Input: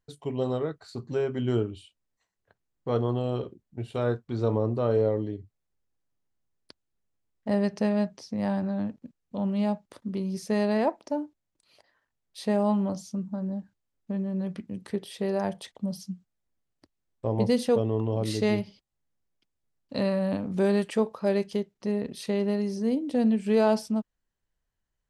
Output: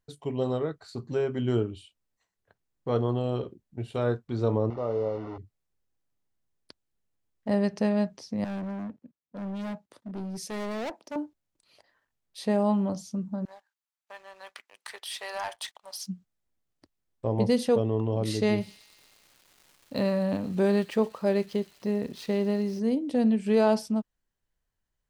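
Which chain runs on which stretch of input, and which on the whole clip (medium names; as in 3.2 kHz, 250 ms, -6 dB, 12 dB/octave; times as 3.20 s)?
4.70–5.38 s: one-bit delta coder 32 kbps, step -28 dBFS + Savitzky-Golay filter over 65 samples + bass shelf 450 Hz -9.5 dB
8.44–11.16 s: high-pass 110 Hz 6 dB/octave + hard clipper -32 dBFS + three bands expanded up and down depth 70%
13.45–16.07 s: high-pass 870 Hz 24 dB/octave + waveshaping leveller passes 2
18.60–22.79 s: median filter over 5 samples + crackle 540 per s -47 dBFS + feedback echo behind a high-pass 121 ms, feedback 71%, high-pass 3.3 kHz, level -13.5 dB
whole clip: none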